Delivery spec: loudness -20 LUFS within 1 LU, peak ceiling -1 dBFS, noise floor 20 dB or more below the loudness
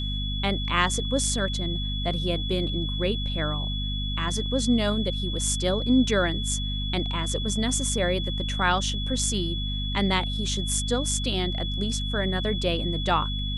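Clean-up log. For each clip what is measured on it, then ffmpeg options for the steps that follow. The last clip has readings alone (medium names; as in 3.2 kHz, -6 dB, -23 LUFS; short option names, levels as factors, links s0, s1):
hum 50 Hz; highest harmonic 250 Hz; hum level -27 dBFS; steady tone 3.4 kHz; tone level -32 dBFS; loudness -26.0 LUFS; peak level -6.5 dBFS; loudness target -20.0 LUFS
-> -af "bandreject=f=50:t=h:w=6,bandreject=f=100:t=h:w=6,bandreject=f=150:t=h:w=6,bandreject=f=200:t=h:w=6,bandreject=f=250:t=h:w=6"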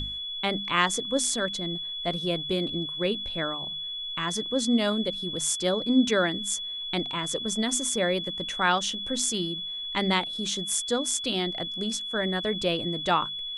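hum not found; steady tone 3.4 kHz; tone level -32 dBFS
-> -af "bandreject=f=3400:w=30"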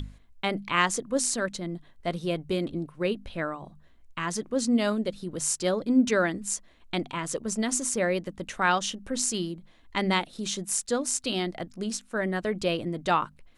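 steady tone not found; loudness -28.5 LUFS; peak level -8.0 dBFS; loudness target -20.0 LUFS
-> -af "volume=2.66,alimiter=limit=0.891:level=0:latency=1"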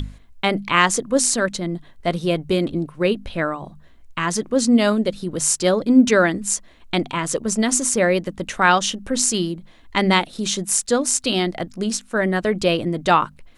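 loudness -20.0 LUFS; peak level -1.0 dBFS; noise floor -48 dBFS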